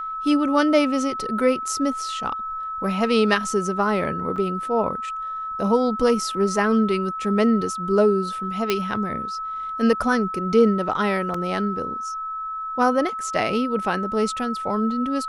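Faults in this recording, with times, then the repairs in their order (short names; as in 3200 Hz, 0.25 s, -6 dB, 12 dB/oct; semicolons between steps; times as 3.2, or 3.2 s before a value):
tone 1300 Hz -27 dBFS
4.36–4.37 gap 5.3 ms
8.7 pop -6 dBFS
11.34 gap 3.7 ms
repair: de-click; notch 1300 Hz, Q 30; interpolate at 4.36, 5.3 ms; interpolate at 11.34, 3.7 ms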